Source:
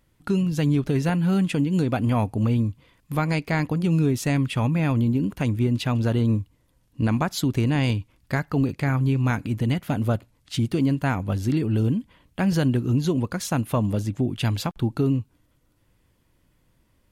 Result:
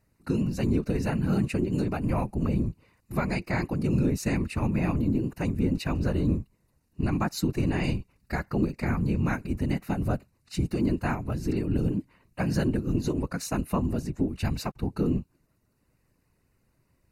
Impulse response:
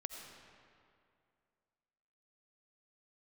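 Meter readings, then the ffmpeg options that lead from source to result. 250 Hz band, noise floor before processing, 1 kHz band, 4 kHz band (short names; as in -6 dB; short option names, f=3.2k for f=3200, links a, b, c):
-4.0 dB, -65 dBFS, -4.5 dB, -7.0 dB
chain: -af "afftfilt=real='hypot(re,im)*cos(2*PI*random(0))':imag='hypot(re,im)*sin(2*PI*random(1))':win_size=512:overlap=0.75,asuperstop=centerf=3300:order=4:qfactor=4,volume=1.5dB"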